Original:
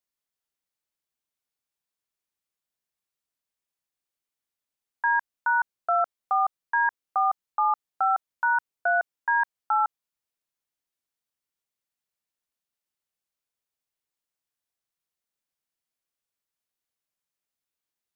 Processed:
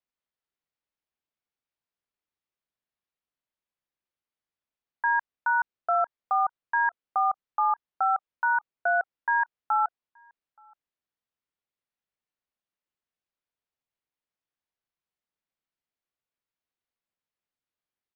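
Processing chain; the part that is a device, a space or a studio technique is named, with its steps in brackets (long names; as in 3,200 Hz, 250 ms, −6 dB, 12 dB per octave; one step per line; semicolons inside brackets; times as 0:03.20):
shout across a valley (high-frequency loss of the air 200 metres; slap from a distant wall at 150 metres, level −30 dB)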